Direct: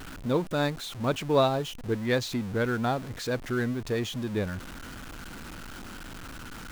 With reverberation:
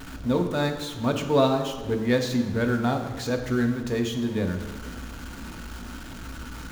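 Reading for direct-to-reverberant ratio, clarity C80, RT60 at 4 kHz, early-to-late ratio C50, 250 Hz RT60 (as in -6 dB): 4.0 dB, 9.0 dB, 1.1 s, 7.5 dB, 1.5 s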